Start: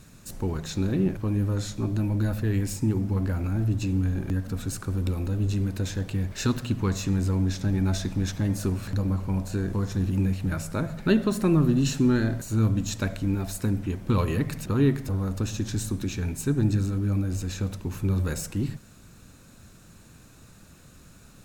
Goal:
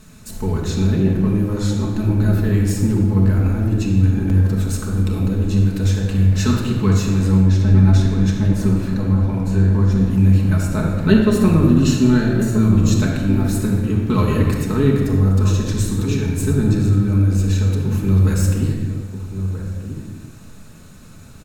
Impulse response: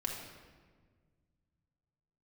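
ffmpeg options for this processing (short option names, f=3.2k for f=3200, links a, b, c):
-filter_complex "[0:a]asettb=1/sr,asplit=3[a][b][c];[a]atrim=end=7.404[d];[b]atrim=start=7.4:end=10.1,asetpts=PTS-STARTPTS,afade=t=in:d=0.004:c=qsin,afade=t=out:st=2.696:d=0.004:c=qsin,highshelf=f=4.2k:g=-6.5[e];[c]atrim=start=10.096[f];[d][e]acrossfade=d=0.004:c1=hsin:c2=qsin[g];[g][f]acrossfade=d=0.004:c1=qsin:c2=hsin,asplit=2[h][i];[i]adelay=1283,volume=-9dB,highshelf=f=4k:g=-28.9[j];[h][j]amix=inputs=2:normalize=0[k];[1:a]atrim=start_sample=2205,afade=t=out:st=0.38:d=0.01,atrim=end_sample=17199,asetrate=35280,aresample=44100[l];[k][l]afir=irnorm=-1:irlink=0,volume=3.5dB"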